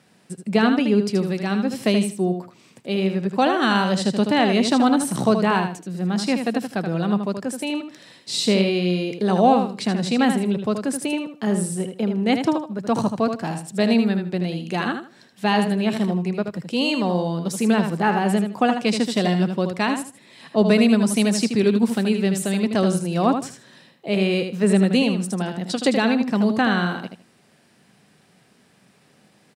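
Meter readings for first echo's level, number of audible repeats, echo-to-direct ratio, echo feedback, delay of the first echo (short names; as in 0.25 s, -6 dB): -7.0 dB, 3, -7.0 dB, 21%, 78 ms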